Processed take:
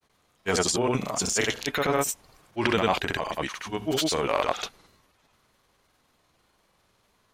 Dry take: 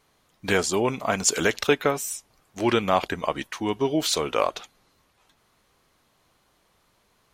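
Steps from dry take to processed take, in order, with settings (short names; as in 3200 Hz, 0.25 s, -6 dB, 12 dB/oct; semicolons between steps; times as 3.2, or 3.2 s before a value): transient shaper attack -8 dB, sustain +8 dB; grains 0.1 s, pitch spread up and down by 0 st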